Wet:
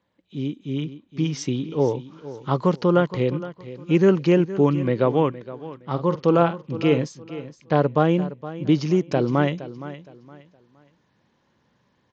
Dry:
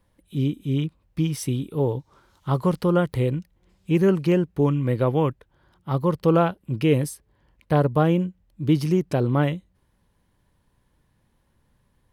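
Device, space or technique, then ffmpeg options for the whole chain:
Bluetooth headset: -filter_complex "[0:a]asettb=1/sr,asplit=3[s0][s1][s2];[s0]atrim=end=5.914[s3];[s1]atrim=start=5.91:end=7.05,asetpts=PTS-STARTPTS,afade=t=in:d=0.004:c=qsin,afade=t=out:st=1.136:d=0.004:c=qsin,asplit=2[s4][s5];[s5]adelay=47,volume=0.282[s6];[s4][s6]amix=inputs=2:normalize=0,atrim=end_sample=50274[s7];[s2]atrim=start=7.046[s8];[s3][s7]acrossfade=d=0.004:c1=hsin:c2=qsin[s9];[s9][s8]acrossfade=d=0.004:c1=qsin:c2=hsin,highpass=170,aecho=1:1:466|932|1398:0.178|0.048|0.013,dynaudnorm=f=180:g=13:m=2.24,aresample=16000,aresample=44100,volume=0.794" -ar 16000 -c:a sbc -b:a 64k

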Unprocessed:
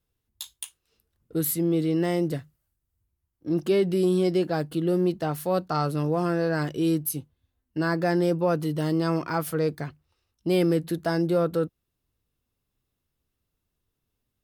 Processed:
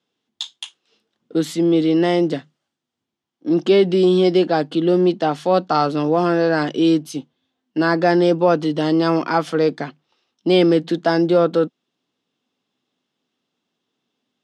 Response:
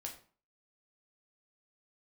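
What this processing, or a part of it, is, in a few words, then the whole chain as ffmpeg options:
television speaker: -af "highpass=f=190:w=0.5412,highpass=f=190:w=1.3066,equalizer=f=250:t=q:w=4:g=4,equalizer=f=780:t=q:w=4:g=4,equalizer=f=3300:t=q:w=4:g=7,lowpass=f=6500:w=0.5412,lowpass=f=6500:w=1.3066,volume=2.51"

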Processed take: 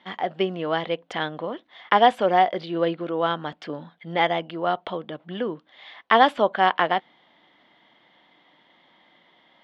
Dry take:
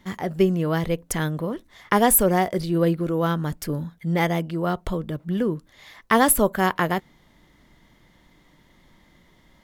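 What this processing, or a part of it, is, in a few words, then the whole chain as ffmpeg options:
phone earpiece: -af "highpass=360,equalizer=f=400:t=q:w=4:g=-4,equalizer=f=750:t=q:w=4:g=6,equalizer=f=3200:t=q:w=4:g=7,lowpass=f=3800:w=0.5412,lowpass=f=3800:w=1.3066,volume=1.12"

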